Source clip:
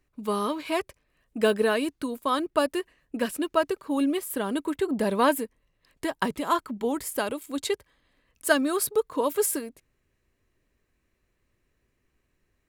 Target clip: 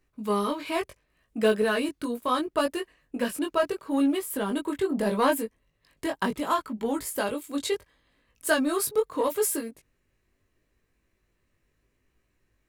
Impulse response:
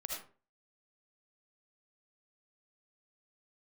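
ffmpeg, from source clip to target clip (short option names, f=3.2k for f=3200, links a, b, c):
-filter_complex "[0:a]flanger=delay=18:depth=3:speed=0.73,asplit=2[a][b];[b]asoftclip=type=tanh:threshold=-27.5dB,volume=-6dB[c];[a][c]amix=inputs=2:normalize=0"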